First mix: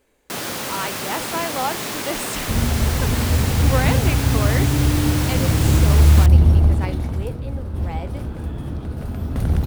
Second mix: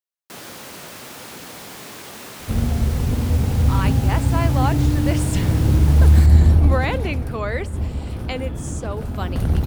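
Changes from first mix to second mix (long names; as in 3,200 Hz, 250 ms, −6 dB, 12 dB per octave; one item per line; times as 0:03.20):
speech: entry +3.00 s
first sound −9.5 dB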